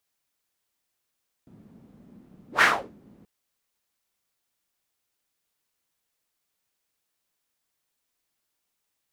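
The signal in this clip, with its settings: whoosh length 1.78 s, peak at 1.15 s, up 0.12 s, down 0.35 s, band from 210 Hz, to 1.7 kHz, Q 2.9, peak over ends 35.5 dB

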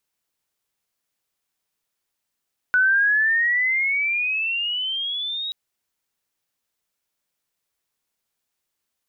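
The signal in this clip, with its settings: gliding synth tone sine, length 2.78 s, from 1.48 kHz, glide +16.5 st, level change -11.5 dB, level -14 dB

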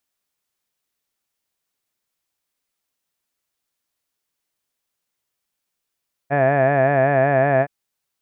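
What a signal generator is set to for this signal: formant-synthesis vowel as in had, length 1.37 s, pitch 137 Hz, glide 0 st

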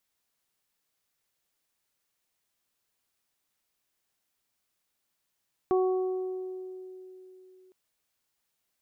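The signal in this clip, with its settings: additive tone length 2.01 s, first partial 372 Hz, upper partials -8.5/-13 dB, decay 3.47 s, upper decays 1.85/1.29 s, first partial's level -21 dB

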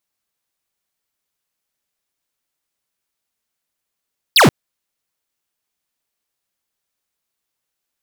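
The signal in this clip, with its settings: laser zap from 5.3 kHz, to 100 Hz, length 0.13 s square, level -9 dB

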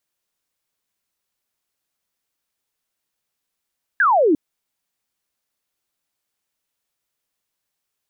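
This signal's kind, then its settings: laser zap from 1.7 kHz, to 280 Hz, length 0.35 s sine, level -12 dB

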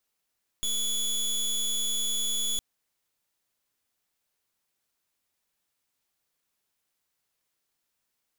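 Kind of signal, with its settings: pulse 3.41 kHz, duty 21% -28 dBFS 1.96 s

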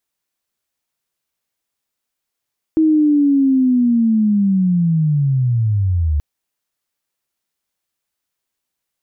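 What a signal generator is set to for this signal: sweep linear 320 Hz -> 71 Hz -9.5 dBFS -> -13.5 dBFS 3.43 s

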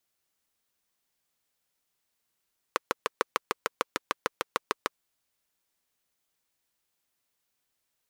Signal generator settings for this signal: single-cylinder engine model, steady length 2.20 s, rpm 800, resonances 490/1100 Hz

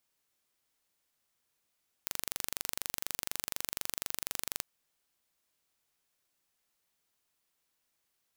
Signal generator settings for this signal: pulse train 24.1 per s, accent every 0, -6.5 dBFS 2.57 s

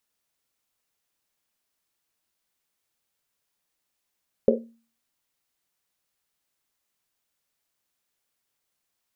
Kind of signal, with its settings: Risset drum, pitch 230 Hz, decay 0.42 s, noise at 480 Hz, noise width 190 Hz, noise 60%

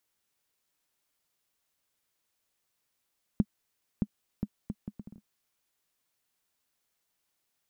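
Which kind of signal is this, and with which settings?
bouncing ball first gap 0.62 s, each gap 0.66, 207 Hz, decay 51 ms -12.5 dBFS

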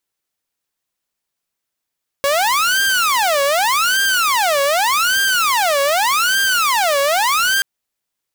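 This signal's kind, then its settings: siren wail 556–1590 Hz 0.84 per s saw -11 dBFS 5.38 s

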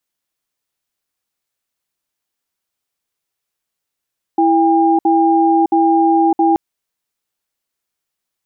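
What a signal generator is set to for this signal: cadence 330 Hz, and 804 Hz, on 0.61 s, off 0.06 s, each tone -12 dBFS 2.18 s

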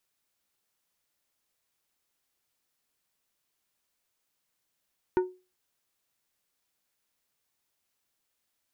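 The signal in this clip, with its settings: glass hit plate, lowest mode 367 Hz, decay 0.30 s, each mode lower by 8 dB, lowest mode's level -18 dB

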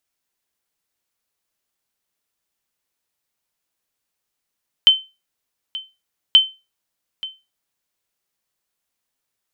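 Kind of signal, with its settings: sonar ping 3.08 kHz, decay 0.26 s, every 1.48 s, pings 2, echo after 0.88 s, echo -18.5 dB -2.5 dBFS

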